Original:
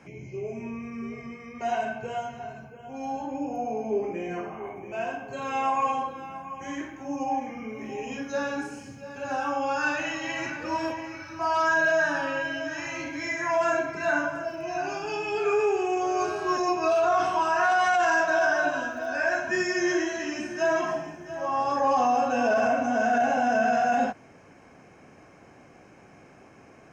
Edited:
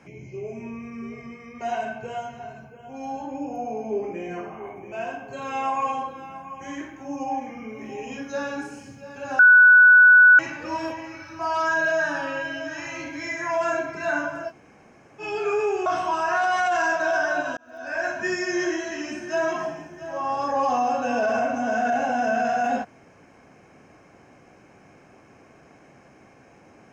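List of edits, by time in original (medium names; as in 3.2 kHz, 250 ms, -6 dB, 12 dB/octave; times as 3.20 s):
9.39–10.39 s: bleep 1.48 kHz -8.5 dBFS
14.50–15.21 s: room tone, crossfade 0.06 s
15.86–17.14 s: delete
18.85–19.36 s: fade in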